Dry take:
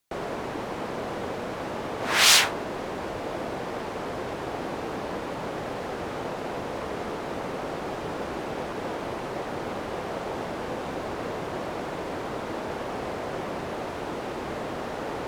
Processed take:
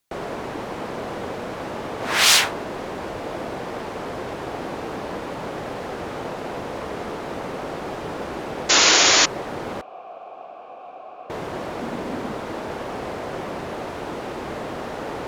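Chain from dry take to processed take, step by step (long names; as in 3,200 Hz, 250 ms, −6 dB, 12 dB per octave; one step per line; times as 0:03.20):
0:08.69–0:09.26: sound drawn into the spectrogram noise 260–7,200 Hz −17 dBFS
0:09.81–0:11.30: formant filter a
0:11.82–0:12.32: parametric band 230 Hz +12 dB 0.42 octaves
level +2 dB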